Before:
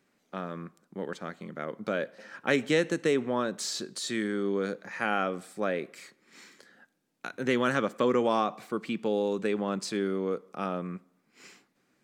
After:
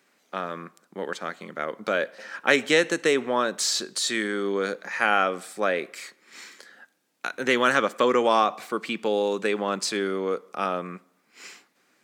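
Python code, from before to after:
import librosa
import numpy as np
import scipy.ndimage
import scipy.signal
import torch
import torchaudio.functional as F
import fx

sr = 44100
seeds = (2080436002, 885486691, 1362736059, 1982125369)

y = fx.highpass(x, sr, hz=660.0, slope=6)
y = y * librosa.db_to_amplitude(9.0)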